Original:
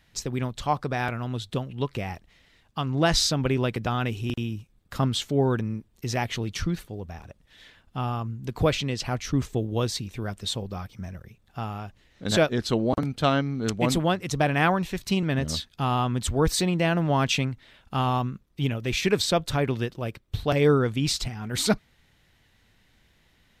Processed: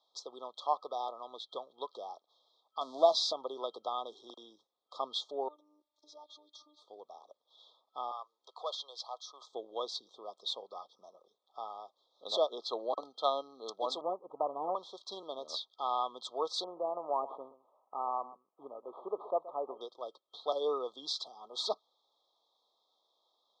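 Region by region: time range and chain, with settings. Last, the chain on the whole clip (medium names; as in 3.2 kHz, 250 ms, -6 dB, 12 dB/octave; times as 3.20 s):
2.81–3.33 s: zero-crossing glitches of -22.5 dBFS + treble shelf 9.3 kHz -6 dB + small resonant body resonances 240/630/2900 Hz, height 12 dB
5.48–6.82 s: compression 16:1, threshold -35 dBFS + robot voice 300 Hz
8.11–9.52 s: Bessel high-pass 830 Hz, order 4 + companded quantiser 8-bit + hard clipper -23 dBFS
14.01–14.75 s: comb filter that takes the minimum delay 0.34 ms + low-pass 1.1 kHz 24 dB/octave + bass shelf 180 Hz +7.5 dB
16.64–19.81 s: CVSD coder 32 kbps + low-pass 1.2 kHz 24 dB/octave + delay 125 ms -16 dB
whole clip: low-pass 4.8 kHz 24 dB/octave; FFT band-reject 1.3–3.2 kHz; high-pass 510 Hz 24 dB/octave; trim -5.5 dB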